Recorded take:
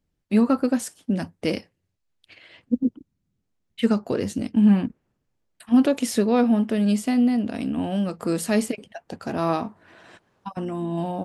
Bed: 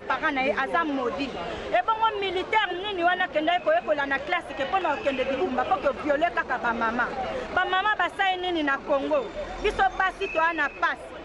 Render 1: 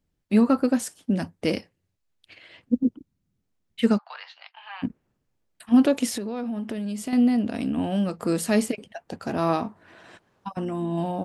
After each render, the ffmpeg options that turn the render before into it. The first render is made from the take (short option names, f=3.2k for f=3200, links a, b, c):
-filter_complex "[0:a]asplit=3[a][b][c];[a]afade=t=out:st=3.97:d=0.02[d];[b]asuperpass=centerf=1900:order=12:qfactor=0.53,afade=t=in:st=3.97:d=0.02,afade=t=out:st=4.82:d=0.02[e];[c]afade=t=in:st=4.82:d=0.02[f];[d][e][f]amix=inputs=3:normalize=0,asettb=1/sr,asplit=3[g][h][i];[g]atrim=end=6.084[j];[h]atrim=start=6.08:end=7.13,asetpts=PTS-STARTPTS,afade=t=in:d=0.004:c=qsin,afade=t=out:st=1.046:d=0.004:c=qsin,acompressor=threshold=-26dB:ratio=12:attack=3.2:release=140:knee=1:detection=peak[k];[i]atrim=start=7.126[l];[j][k]acrossfade=d=0.004:c1=hsin:c2=qsin[m];[m][l]acrossfade=d=0.004:c1=qsin:c2=hsin"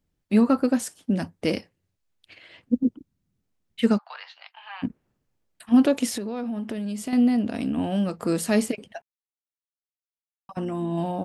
-filter_complex "[0:a]asplit=3[a][b][c];[a]atrim=end=9.02,asetpts=PTS-STARTPTS,afade=t=out:st=9.016:d=0.004:c=hsin[d];[b]atrim=start=9.02:end=10.49,asetpts=PTS-STARTPTS,volume=0[e];[c]atrim=start=10.49,asetpts=PTS-STARTPTS,afade=t=in:d=0.004:c=hsin[f];[d][e][f]concat=n=3:v=0:a=1"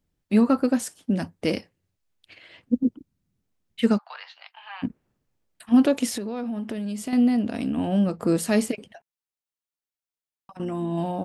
-filter_complex "[0:a]asettb=1/sr,asplit=3[a][b][c];[a]atrim=end=7.874[d];[b]atrim=start=7.87:end=8.37,asetpts=PTS-STARTPTS,afade=t=in:d=0.004:c=qsin,afade=t=out:st=0.496:d=0.004:c=qsin,tiltshelf=f=970:g=3.5[e];[c]atrim=start=8.366[f];[d][e]acrossfade=d=0.004:c1=hsin:c2=qsin[g];[g][f]acrossfade=d=0.004:c1=qsin:c2=hsin,asettb=1/sr,asplit=3[h][i][j];[h]atrim=end=8.884[k];[i]atrim=start=8.88:end=10.6,asetpts=PTS-STARTPTS,afade=t=in:d=0.004:c=qsin,afade=t=out:st=1.716:d=0.004:c=qsin,acompressor=threshold=-41dB:ratio=6:attack=3.2:release=140:knee=1:detection=peak[l];[j]atrim=start=10.596[m];[k][l]acrossfade=d=0.004:c1=hsin:c2=qsin[n];[n][m]acrossfade=d=0.004:c1=qsin:c2=hsin"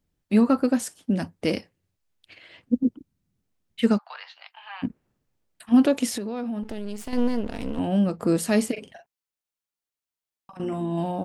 -filter_complex "[0:a]asettb=1/sr,asplit=3[a][b][c];[a]atrim=end=6.634[d];[b]atrim=start=6.63:end=7.79,asetpts=PTS-STARTPTS,afade=t=in:d=0.004:c=qsin,afade=t=out:st=1.156:d=0.004:c=qsin,aeval=exprs='max(val(0),0)':c=same[e];[c]atrim=start=7.786[f];[d][e]acrossfade=d=0.004:c1=hsin:c2=qsin[g];[g][f]acrossfade=d=0.004:c1=qsin:c2=hsin,asettb=1/sr,asplit=3[h][i][j];[h]atrim=end=8.724[k];[i]atrim=start=8.72:end=10.81,asetpts=PTS-STARTPTS,afade=t=in:d=0.004:c=qsin,afade=t=out:st=2.086:d=0.004:c=qsin,asplit=2[l][m];[m]adelay=42,volume=-6dB[n];[l][n]amix=inputs=2:normalize=0,atrim=end_sample=92169[o];[j]atrim=start=10.806[p];[k][o]acrossfade=d=0.004:c1=hsin:c2=qsin[q];[q][p]acrossfade=d=0.004:c1=qsin:c2=hsin"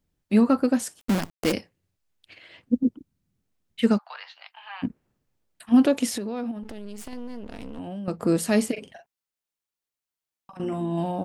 -filter_complex "[0:a]asplit=3[a][b][c];[a]afade=t=out:st=0.99:d=0.02[d];[b]acrusher=bits=5:dc=4:mix=0:aa=0.000001,afade=t=in:st=0.99:d=0.02,afade=t=out:st=1.51:d=0.02[e];[c]afade=t=in:st=1.51:d=0.02[f];[d][e][f]amix=inputs=3:normalize=0,asettb=1/sr,asplit=3[g][h][i];[g]atrim=end=6.514[j];[h]atrim=start=6.51:end=8.08,asetpts=PTS-STARTPTS,afade=t=in:d=0.004:c=qsin,afade=t=out:st=1.566:d=0.004:c=qsin,acompressor=threshold=-32dB:ratio=6:attack=3.2:release=140:knee=1:detection=peak[k];[i]atrim=start=8.076[l];[j][k]acrossfade=d=0.004:c1=hsin:c2=qsin[m];[m][l]acrossfade=d=0.004:c1=qsin:c2=hsin"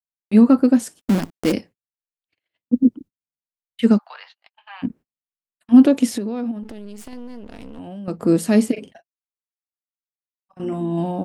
-af "agate=range=-38dB:threshold=-44dB:ratio=16:detection=peak,adynamicequalizer=threshold=0.0224:dfrequency=260:dqfactor=0.84:tfrequency=260:tqfactor=0.84:attack=5:release=100:ratio=0.375:range=4:mode=boostabove:tftype=bell"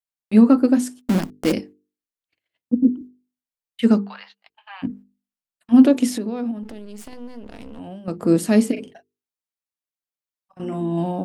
-af "bandreject=f=50:t=h:w=6,bandreject=f=100:t=h:w=6,bandreject=f=150:t=h:w=6,bandreject=f=200:t=h:w=6,bandreject=f=250:t=h:w=6,bandreject=f=300:t=h:w=6,bandreject=f=350:t=h:w=6,bandreject=f=400:t=h:w=6,bandreject=f=450:t=h:w=6"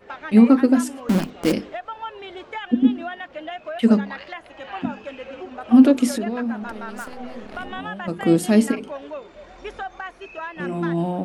-filter_complex "[1:a]volume=-9.5dB[a];[0:a][a]amix=inputs=2:normalize=0"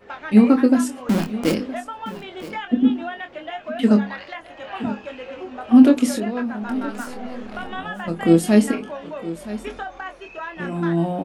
-filter_complex "[0:a]asplit=2[a][b];[b]adelay=24,volume=-7dB[c];[a][c]amix=inputs=2:normalize=0,aecho=1:1:968:0.168"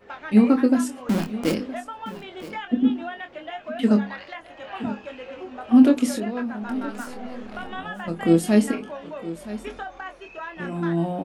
-af "volume=-3dB"